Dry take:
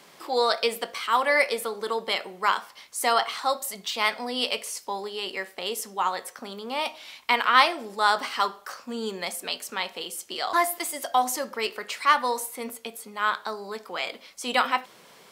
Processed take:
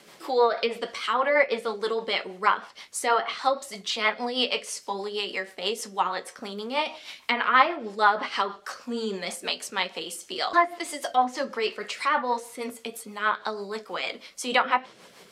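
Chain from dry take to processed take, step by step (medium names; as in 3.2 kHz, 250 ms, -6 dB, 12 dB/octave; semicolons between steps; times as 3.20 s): low-pass that closes with the level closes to 2 kHz, closed at -18.5 dBFS; flange 0.74 Hz, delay 8.8 ms, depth 3.1 ms, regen -58%; rotary cabinet horn 6.3 Hz; trim +8 dB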